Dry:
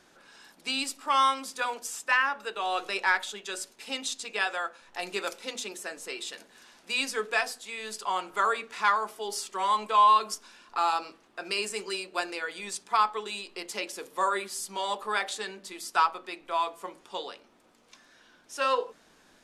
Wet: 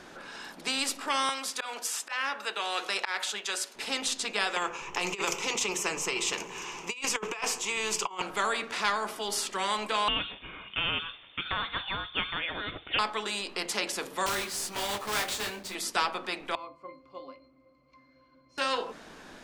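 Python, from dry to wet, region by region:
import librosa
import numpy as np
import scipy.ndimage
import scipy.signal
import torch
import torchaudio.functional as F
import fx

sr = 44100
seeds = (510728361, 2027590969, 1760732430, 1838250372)

y = fx.chain(x, sr, fx.highpass(hz=1000.0, slope=6),
    fx.auto_swell(attack_ms=185.0), at=(1.29, 3.75))
y = fx.chain(y, sr, fx.ripple_eq(per_octave=0.74, db=15),
    fx.over_compress(threshold_db=-32.0, ratio=-0.5), at=(4.56, 8.22))
y = fx.chain(y, sr, fx.cheby1_highpass(hz=340.0, order=2),
    fx.freq_invert(carrier_hz=3900), at=(10.08, 12.99))
y = fx.chain(y, sr, fx.block_float(bits=3),
    fx.detune_double(cents=12), at=(14.26, 15.75))
y = fx.chain(y, sr, fx.peak_eq(hz=4400.0, db=5.5, octaves=2.4),
    fx.octave_resonator(note='C', decay_s=0.2), at=(16.55, 18.58))
y = fx.high_shelf(y, sr, hz=4800.0, db=-9.0)
y = fx.spectral_comp(y, sr, ratio=2.0)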